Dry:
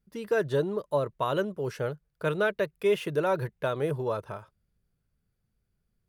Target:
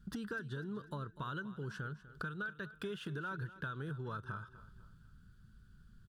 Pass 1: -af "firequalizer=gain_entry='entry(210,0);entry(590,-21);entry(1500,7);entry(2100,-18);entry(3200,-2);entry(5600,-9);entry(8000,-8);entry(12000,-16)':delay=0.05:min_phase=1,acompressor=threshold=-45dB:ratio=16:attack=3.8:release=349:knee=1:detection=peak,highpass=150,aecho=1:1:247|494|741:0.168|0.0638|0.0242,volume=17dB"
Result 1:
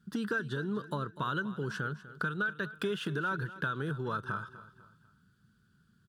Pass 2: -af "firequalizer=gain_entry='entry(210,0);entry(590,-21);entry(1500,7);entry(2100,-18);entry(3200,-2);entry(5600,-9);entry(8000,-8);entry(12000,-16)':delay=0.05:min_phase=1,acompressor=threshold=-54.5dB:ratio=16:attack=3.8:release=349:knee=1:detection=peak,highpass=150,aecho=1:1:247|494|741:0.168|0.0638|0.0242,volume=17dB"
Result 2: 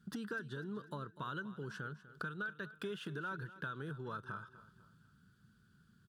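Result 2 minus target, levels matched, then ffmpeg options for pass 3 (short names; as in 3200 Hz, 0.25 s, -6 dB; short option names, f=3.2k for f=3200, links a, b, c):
125 Hz band -3.0 dB
-af "firequalizer=gain_entry='entry(210,0);entry(590,-21);entry(1500,7);entry(2100,-18);entry(3200,-2);entry(5600,-9);entry(8000,-8);entry(12000,-16)':delay=0.05:min_phase=1,acompressor=threshold=-54.5dB:ratio=16:attack=3.8:release=349:knee=1:detection=peak,aecho=1:1:247|494|741:0.168|0.0638|0.0242,volume=17dB"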